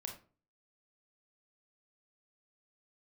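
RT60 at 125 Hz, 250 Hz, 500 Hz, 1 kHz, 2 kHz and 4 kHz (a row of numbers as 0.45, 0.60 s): 0.50, 0.50, 0.40, 0.35, 0.30, 0.25 s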